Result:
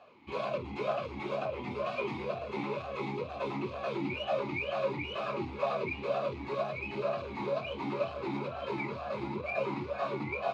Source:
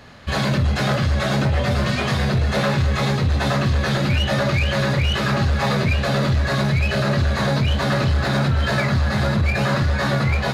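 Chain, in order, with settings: talking filter a-u 2.1 Hz

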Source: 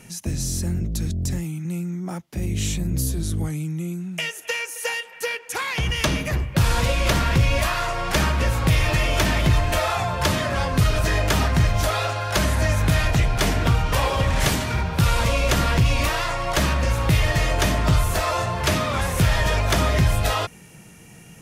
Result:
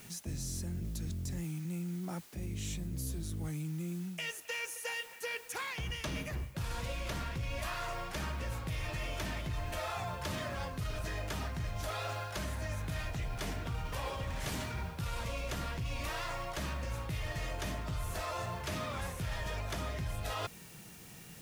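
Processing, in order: word length cut 8-bit, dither triangular; reverse; compression 6:1, threshold -27 dBFS, peak gain reduction 13 dB; reverse; trim -8 dB

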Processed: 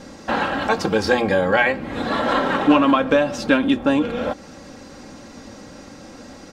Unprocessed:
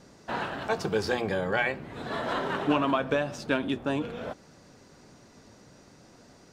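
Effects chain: treble shelf 7.5 kHz -5.5 dB; in parallel at +2 dB: compression, threshold -37 dBFS, peak gain reduction 16.5 dB; on the sum: comb 3.7 ms, depth 53%; trim +6.5 dB

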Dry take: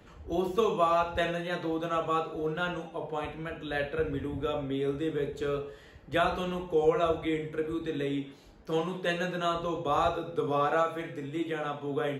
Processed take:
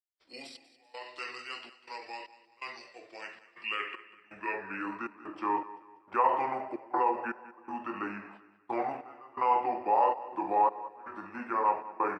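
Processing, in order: gate -47 dBFS, range -32 dB; high-pass 440 Hz 6 dB/octave; in parallel at -1.5 dB: gain riding within 4 dB 2 s; on the sum: peak limiter -18 dBFS, peak gain reduction 9.5 dB; trance gate ".xx..xxxx" 80 bpm -24 dB; pitch shift -5.5 st; band-pass sweep 4.4 kHz -> 960 Hz, 3.14–5.30 s; feedback delay 193 ms, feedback 38%, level -17 dB; on a send at -24 dB: reverberation RT60 1.5 s, pre-delay 5 ms; on the sum: trim +7.5 dB

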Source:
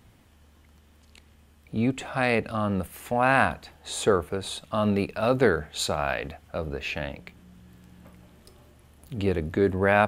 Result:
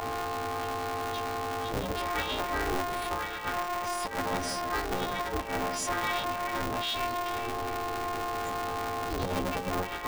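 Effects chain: partials quantised in pitch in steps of 3 st; feedback echo behind a band-pass 186 ms, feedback 48%, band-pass 530 Hz, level -10.5 dB; whistle 630 Hz -27 dBFS; tape spacing loss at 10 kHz 34 dB; compressor with a negative ratio -26 dBFS, ratio -0.5; on a send at -24 dB: reverberation, pre-delay 3 ms; on the sum: formant shift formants +6 st; in parallel at -3 dB: peak limiter -24.5 dBFS, peak gain reduction 10 dB; on the sum: polarity switched at an audio rate 180 Hz; trim -6.5 dB

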